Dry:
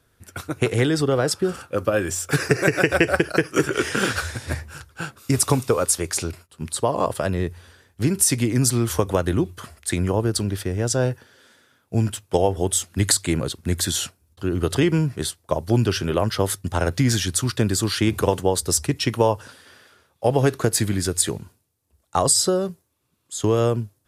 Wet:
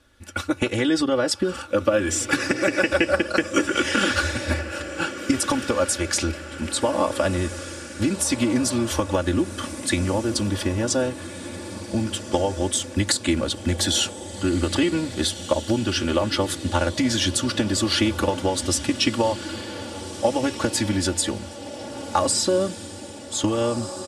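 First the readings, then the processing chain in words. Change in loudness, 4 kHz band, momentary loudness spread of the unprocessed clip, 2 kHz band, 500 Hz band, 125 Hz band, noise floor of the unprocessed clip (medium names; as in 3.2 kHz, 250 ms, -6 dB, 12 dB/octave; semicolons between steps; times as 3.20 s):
-1.0 dB, +3.0 dB, 10 LU, +1.0 dB, -1.5 dB, -6.0 dB, -67 dBFS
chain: compression, threshold -22 dBFS, peak gain reduction 10 dB; low-pass 8 kHz 12 dB/octave; peaking EQ 3 kHz +3.5 dB 0.67 oct; comb 3.5 ms, depth 94%; echo that smears into a reverb 1601 ms, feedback 55%, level -12 dB; trim +2.5 dB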